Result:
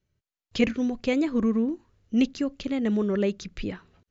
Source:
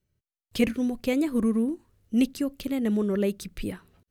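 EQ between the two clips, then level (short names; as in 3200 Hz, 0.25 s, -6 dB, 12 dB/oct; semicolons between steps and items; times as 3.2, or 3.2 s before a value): brick-wall FIR low-pass 7400 Hz; bell 1600 Hz +2.5 dB 2.9 oct; 0.0 dB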